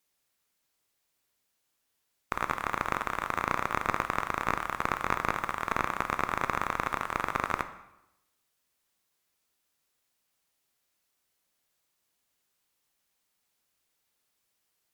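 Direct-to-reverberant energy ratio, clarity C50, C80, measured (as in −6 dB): 9.5 dB, 12.5 dB, 15.0 dB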